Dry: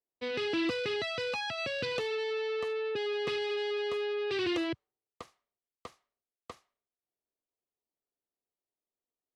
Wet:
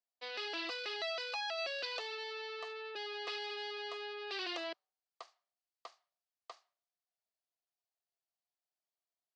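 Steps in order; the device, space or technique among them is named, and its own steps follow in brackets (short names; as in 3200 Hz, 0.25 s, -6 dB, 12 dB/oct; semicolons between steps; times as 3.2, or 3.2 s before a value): phone speaker on a table (speaker cabinet 480–7000 Hz, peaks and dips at 480 Hz -8 dB, 690 Hz +6 dB, 2200 Hz -3 dB, 4600 Hz +6 dB); gain -4 dB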